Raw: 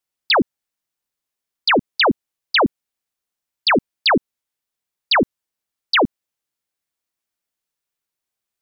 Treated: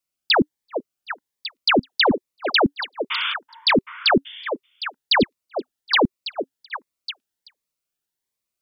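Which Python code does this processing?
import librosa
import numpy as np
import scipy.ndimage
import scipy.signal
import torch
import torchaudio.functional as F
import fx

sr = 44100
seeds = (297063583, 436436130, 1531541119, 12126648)

y = fx.spec_paint(x, sr, seeds[0], shape='noise', start_s=3.1, length_s=0.24, low_hz=870.0, high_hz=3600.0, level_db=-22.0)
y = fx.echo_stepped(y, sr, ms=383, hz=530.0, octaves=1.4, feedback_pct=70, wet_db=-5)
y = fx.notch_cascade(y, sr, direction='rising', hz=1.3)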